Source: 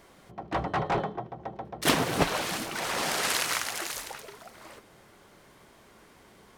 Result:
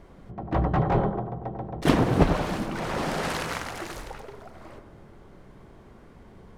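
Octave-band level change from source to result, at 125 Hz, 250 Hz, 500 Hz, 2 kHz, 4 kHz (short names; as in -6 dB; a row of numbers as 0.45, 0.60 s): +10.5, +8.0, +4.5, -2.5, -6.5 dB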